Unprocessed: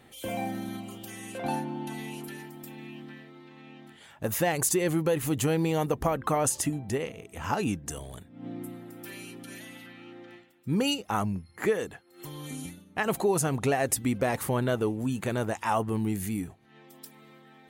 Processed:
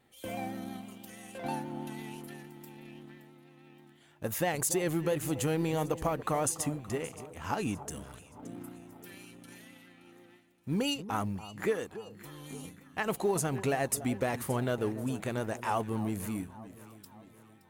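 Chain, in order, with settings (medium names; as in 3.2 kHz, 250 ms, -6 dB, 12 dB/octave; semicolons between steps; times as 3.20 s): companding laws mixed up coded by A; echo whose repeats swap between lows and highs 286 ms, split 1.1 kHz, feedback 68%, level -13.5 dB; vibrato 6.1 Hz 31 cents; trim -3.5 dB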